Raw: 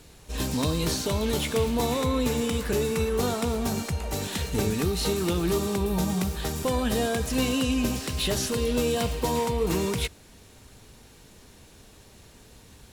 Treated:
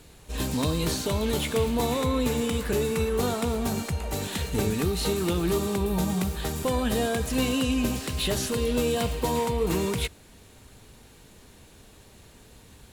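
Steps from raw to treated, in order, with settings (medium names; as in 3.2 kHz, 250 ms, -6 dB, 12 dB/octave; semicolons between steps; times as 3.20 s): peaking EQ 5.5 kHz -4 dB 0.41 oct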